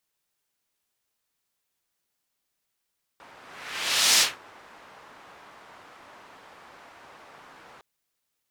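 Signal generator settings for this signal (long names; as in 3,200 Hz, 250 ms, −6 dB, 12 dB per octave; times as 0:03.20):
pass-by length 4.61 s, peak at 0:00.99, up 0.87 s, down 0.21 s, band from 1,100 Hz, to 5,100 Hz, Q 1, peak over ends 31.5 dB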